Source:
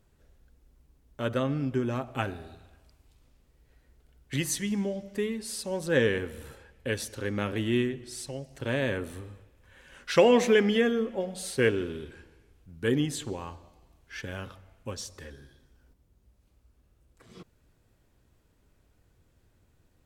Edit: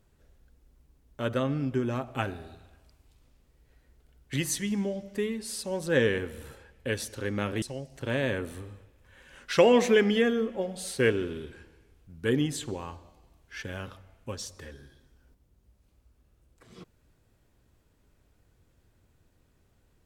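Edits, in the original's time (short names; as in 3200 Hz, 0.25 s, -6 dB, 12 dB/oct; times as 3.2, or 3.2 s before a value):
7.62–8.21 cut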